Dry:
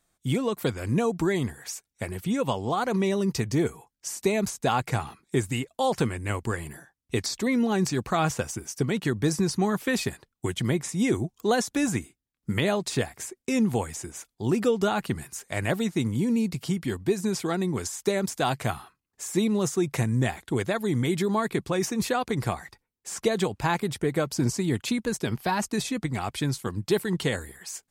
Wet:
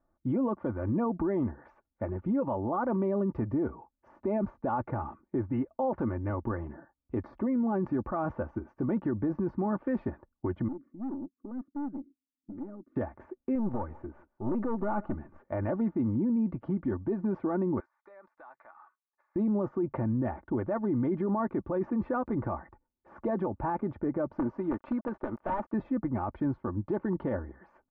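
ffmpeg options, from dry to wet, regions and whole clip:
-filter_complex "[0:a]asettb=1/sr,asplit=3[a][b][c];[a]atrim=end=10.684[d];[b]atrim=start=10.68:end=12.96,asetpts=PTS-STARTPTS,afade=t=in:d=0.004:c=qsin,afade=t=out:st=2.276:d=0.004:c=qsin,asplit=3[e][f][g];[e]bandpass=f=270:t=q:w=8,volume=0dB[h];[f]bandpass=f=2.29k:t=q:w=8,volume=-6dB[i];[g]bandpass=f=3.01k:t=q:w=8,volume=-9dB[j];[h][i][j]amix=inputs=3:normalize=0,highshelf=f=1.7k:t=q:w=3:g=-11.5,aeval=exprs='(tanh(63.1*val(0)+0.3)-tanh(0.3))/63.1':c=same[k];[c]atrim=start=12.956[l];[d][k]acrossfade=d=0.004:c1=hsin:c2=qsin[m];[m][l]acrossfade=d=0.004:c1=qsin:c2=hsin,asettb=1/sr,asplit=3[n][o][p];[n]atrim=end=13.554[q];[o]atrim=start=13.55:end=15.48,asetpts=PTS-STARTPTS,afade=t=in:d=0.004:c=qsin,afade=t=out:st=1.926:d=0.004:c=qsin,aeval=exprs='(tanh(14.1*val(0)+0.55)-tanh(0.55))/14.1':c=same,aecho=1:1:154:0.0668,atrim=end_sample=85113[r];[p]atrim=start=15.476[s];[q][r]acrossfade=d=0.004:c1=hsin:c2=qsin[t];[t][s]acrossfade=d=0.004:c1=qsin:c2=hsin,asettb=1/sr,asplit=3[u][v][w];[u]atrim=end=17.804[x];[v]atrim=start=17.8:end=19.36,asetpts=PTS-STARTPTS,afade=t=in:d=0.004:c=qsin,afade=t=out:st=1.556:d=0.004:c=qsin,highpass=1.4k,equalizer=f=3k:w=5.7:g=-13,acompressor=threshold=-44dB:ratio=5:attack=3.2:release=140:knee=1:detection=peak[y];[w]atrim=start=19.356[z];[x][y]acrossfade=d=0.004:c1=hsin:c2=qsin[aa];[aa][z]acrossfade=d=0.004:c1=qsin:c2=hsin,asettb=1/sr,asplit=3[ab][ac][ad];[ab]atrim=end=24.324[ae];[ac]atrim=start=24.32:end=25.74,asetpts=PTS-STARTPTS,afade=t=in:d=0.004:c=qsin,afade=t=out:st=1.416:d=0.004:c=qsin,highpass=f=430:p=1,aeval=exprs='(mod(11.2*val(0)+1,2)-1)/11.2':c=same,acrusher=bits=6:mix=0:aa=0.5[af];[ad]atrim=start=25.736[ag];[ae][af]acrossfade=d=0.004:c1=hsin:c2=qsin[ah];[ah][ag]acrossfade=d=0.004:c1=qsin:c2=hsin,lowpass=f=1.2k:w=0.5412,lowpass=f=1.2k:w=1.3066,aecho=1:1:3.4:0.59,alimiter=limit=-22.5dB:level=0:latency=1:release=13"

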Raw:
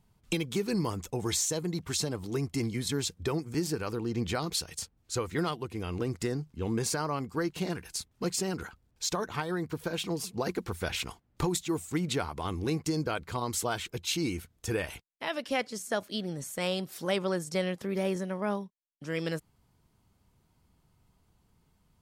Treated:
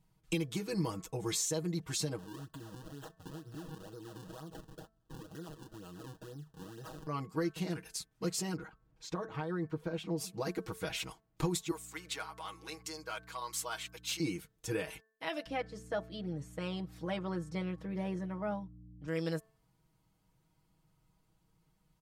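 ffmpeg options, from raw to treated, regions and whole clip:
-filter_complex "[0:a]asettb=1/sr,asplit=3[a][b][c];[a]atrim=end=2.184[d];[b]atrim=start=2.18:end=7.07,asetpts=PTS-STARTPTS,afade=t=in:d=0.004:c=qsin,afade=t=out:st=4.886:d=0.004:c=qsin,acompressor=threshold=-40dB:ratio=5:attack=3.2:release=140:knee=1:detection=peak,acrusher=samples=39:mix=1:aa=0.000001:lfo=1:lforange=62.4:lforate=2.1,asuperstop=centerf=2200:order=4:qfactor=2.5[e];[c]atrim=start=7.066[f];[d][e]acrossfade=d=0.004:c1=hsin:c2=qsin[g];[g][f]acrossfade=d=0.004:c1=qsin:c2=hsin,asettb=1/sr,asplit=3[h][i][j];[h]atrim=end=8.564[k];[i]atrim=start=8.56:end=10.18,asetpts=PTS-STARTPTS,afade=t=in:d=0.004:c=qsin,afade=t=out:st=1.616:d=0.004:c=qsin,lowpass=f=1.5k:p=1,acompressor=mode=upward:threshold=-54dB:ratio=2.5:attack=3.2:release=140:knee=2.83:detection=peak[l];[j]atrim=start=10.176[m];[k][l]acrossfade=d=0.004:c1=hsin:c2=qsin[n];[n][m]acrossfade=d=0.004:c1=qsin:c2=hsin,asettb=1/sr,asplit=3[o][p][q];[o]atrim=end=11.714[r];[p]atrim=start=11.71:end=14.2,asetpts=PTS-STARTPTS,afade=t=in:d=0.004:c=qsin,afade=t=out:st=2.486:d=0.004:c=qsin,highpass=840,aeval=exprs='val(0)+0.00282*(sin(2*PI*60*n/s)+sin(2*PI*2*60*n/s)/2+sin(2*PI*3*60*n/s)/3+sin(2*PI*4*60*n/s)/4+sin(2*PI*5*60*n/s)/5)':c=same,asoftclip=type=hard:threshold=-25dB[s];[q]atrim=start=14.196[t];[r][s]acrossfade=d=0.004:c1=hsin:c2=qsin[u];[u][t]acrossfade=d=0.004:c1=qsin:c2=hsin,asettb=1/sr,asplit=3[v][w][x];[v]atrim=end=15.464[y];[w]atrim=start=15.46:end=19.08,asetpts=PTS-STARTPTS,afade=t=in:d=0.004:c=qsin,afade=t=out:st=3.616:d=0.004:c=qsin,lowpass=f=1.6k:p=1,aeval=exprs='val(0)+0.00562*(sin(2*PI*60*n/s)+sin(2*PI*2*60*n/s)/2+sin(2*PI*3*60*n/s)/3+sin(2*PI*4*60*n/s)/4+sin(2*PI*5*60*n/s)/5)':c=same[z];[x]atrim=start=19.076[aa];[y][z]acrossfade=d=0.004:c1=hsin:c2=qsin[ab];[ab][aa]acrossfade=d=0.004:c1=qsin:c2=hsin,aecho=1:1:6.3:0.85,bandreject=f=220.7:t=h:w=4,bandreject=f=441.4:t=h:w=4,bandreject=f=662.1:t=h:w=4,bandreject=f=882.8:t=h:w=4,bandreject=f=1.1035k:t=h:w=4,bandreject=f=1.3242k:t=h:w=4,bandreject=f=1.5449k:t=h:w=4,bandreject=f=1.7656k:t=h:w=4,volume=-7dB"

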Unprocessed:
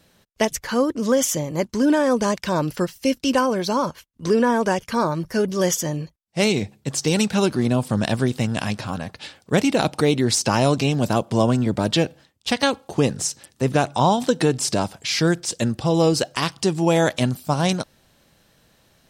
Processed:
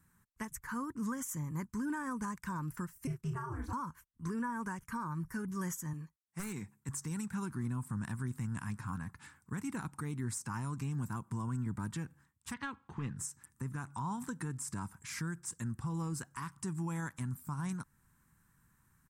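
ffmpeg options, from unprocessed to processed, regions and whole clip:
-filter_complex "[0:a]asettb=1/sr,asplit=3[a][b][c];[a]atrim=end=3.074[d];[b]atrim=start=3.07:end=3.73,asetpts=PTS-STARTPTS,afade=t=in:d=0.004:c=qsin,afade=t=out:st=0.656:d=0.004:c=qsin,highshelf=f=2.9k:g=-9.5,aeval=exprs='val(0)*sin(2*PI*120*n/s)':c=same,asplit=2[e][f];[f]adelay=32,volume=-4dB[g];[e][g]amix=inputs=2:normalize=0,atrim=end_sample=29106[h];[c]atrim=start=3.726[i];[d][h]acrossfade=d=0.004:c1=hsin:c2=qsin[j];[j][i]acrossfade=d=0.004:c1=qsin:c2=hsin,asettb=1/sr,asplit=3[k][l][m];[k]atrim=end=5.934[n];[l]atrim=start=5.93:end=6.89,asetpts=PTS-STARTPTS,afade=t=in:d=0.004:c=qsin,afade=t=out:st=0.956:d=0.004:c=qsin,highpass=f=290:p=1,aeval=exprs='0.2*(abs(mod(val(0)/0.2+3,4)-2)-1)':c=same[o];[m]atrim=start=6.886[p];[n][o]acrossfade=d=0.004:c1=hsin:c2=qsin[q];[q][p]acrossfade=d=0.004:c1=qsin:c2=hsin,asettb=1/sr,asplit=3[r][s][t];[r]atrim=end=12.544[u];[s]atrim=start=12.54:end=13.17,asetpts=PTS-STARTPTS,afade=t=in:d=0.004:c=qsin,afade=t=out:st=0.626:d=0.004:c=qsin,asoftclip=type=hard:threshold=-12.5dB,lowpass=f=3.2k:t=q:w=2.4[v];[t]atrim=start=13.166[w];[u][v]acrossfade=d=0.004:c1=hsin:c2=qsin[x];[x][w]acrossfade=d=0.004:c1=qsin:c2=hsin,firequalizer=gain_entry='entry(150,0);entry(610,-27);entry(960,-1);entry(1600,-2);entry(3000,-20);entry(4400,-20);entry(7800,-1)':delay=0.05:min_phase=1,alimiter=limit=-22dB:level=0:latency=1:release=238,volume=-7.5dB"

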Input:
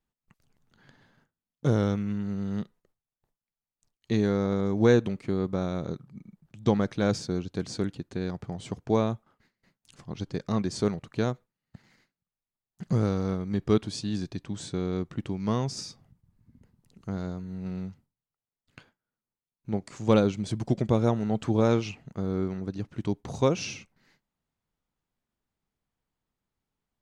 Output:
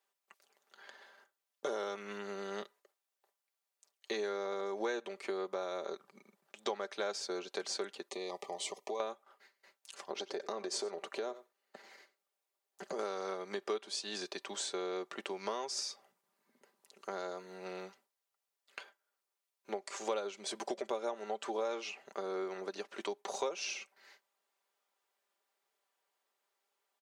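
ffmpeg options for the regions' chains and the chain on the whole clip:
-filter_complex "[0:a]asettb=1/sr,asplit=3[a][b][c];[a]atrim=end=8.084[d];[b]atrim=start=8.08:end=9,asetpts=PTS-STARTPTS,afade=t=in:d=0.004:c=qsin,afade=t=out:st=0.916:d=0.004:c=qsin,highshelf=f=5.7k:g=5,acompressor=threshold=-31dB:ratio=6:attack=3.2:release=140:knee=1:detection=peak,asuperstop=centerf=1500:order=8:qfactor=2.6[e];[c]atrim=start=8.996[f];[d][e]acrossfade=d=0.004:c1=hsin:c2=qsin[g];[g][f]acrossfade=d=0.004:c1=qsin:c2=hsin,asettb=1/sr,asplit=3[h][i][j];[h]atrim=end=10.104[k];[i]atrim=start=10.1:end=12.99,asetpts=PTS-STARTPTS,afade=t=in:d=0.004:c=qsin,afade=t=out:st=2.886:d=0.004:c=qsin,equalizer=f=370:t=o:w=2.2:g=7.5,acompressor=threshold=-28dB:ratio=6:attack=3.2:release=140:knee=1:detection=peak,aecho=1:1:92:0.106,atrim=end_sample=127449[l];[j]atrim=start=12.986[m];[k][l]acrossfade=d=0.004:c1=hsin:c2=qsin[n];[n][m]acrossfade=d=0.004:c1=qsin:c2=hsin,highpass=f=450:w=0.5412,highpass=f=450:w=1.3066,aecho=1:1:5.1:0.54,acompressor=threshold=-41dB:ratio=4,volume=5dB"

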